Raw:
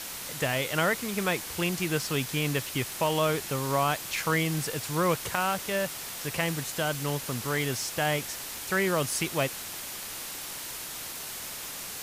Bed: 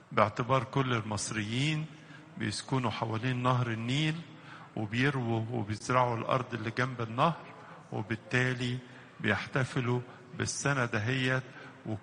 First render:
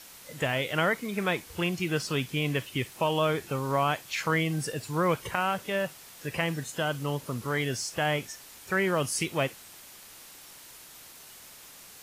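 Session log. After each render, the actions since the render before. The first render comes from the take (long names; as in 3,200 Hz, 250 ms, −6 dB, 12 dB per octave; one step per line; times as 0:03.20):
noise reduction from a noise print 11 dB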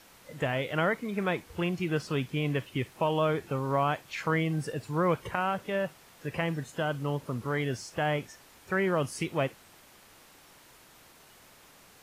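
high-shelf EQ 2,900 Hz −11.5 dB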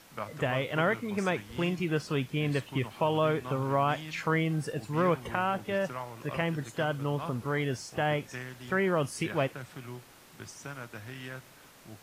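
mix in bed −12.5 dB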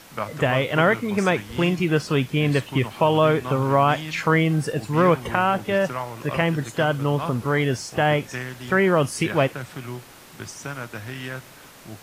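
level +9 dB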